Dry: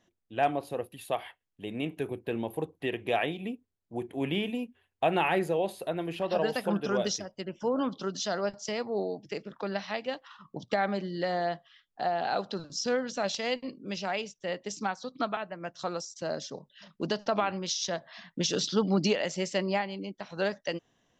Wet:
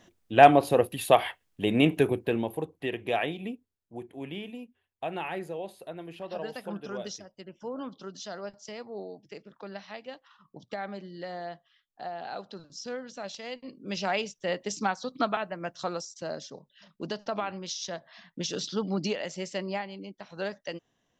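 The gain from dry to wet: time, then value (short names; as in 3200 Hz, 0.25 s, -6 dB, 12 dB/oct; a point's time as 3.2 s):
1.94 s +11.5 dB
2.62 s 0 dB
3.46 s 0 dB
4.26 s -8 dB
13.55 s -8 dB
14 s +3.5 dB
15.57 s +3.5 dB
16.54 s -4 dB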